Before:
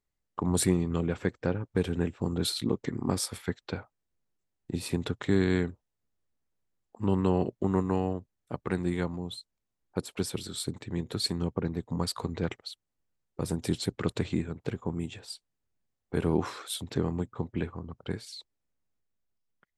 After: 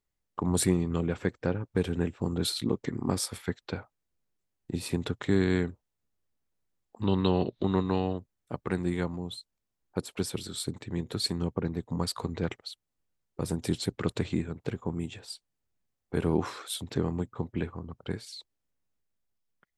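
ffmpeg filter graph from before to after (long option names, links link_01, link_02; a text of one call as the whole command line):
ffmpeg -i in.wav -filter_complex "[0:a]asettb=1/sr,asplit=3[link_01][link_02][link_03];[link_01]atrim=end=7.024[link_04];[link_02]atrim=start=7.02:end=8.18,asetpts=PTS-STARTPTS,afade=type=in:duration=0.004:curve=qsin,afade=type=out:start_time=1.156:duration=0.004:curve=qsin,acompressor=mode=upward:threshold=-29dB:ratio=2.5:attack=3.2:release=140:knee=2.83:detection=peak,lowpass=frequency=3800:width_type=q:width=14[link_05];[link_03]atrim=start=8.176[link_06];[link_04][link_05]acrossfade=duration=0.004:curve1=hsin:curve2=qsin[link_07];[link_07][link_06]acrossfade=duration=0.004:curve1=qsin:curve2=hsin" out.wav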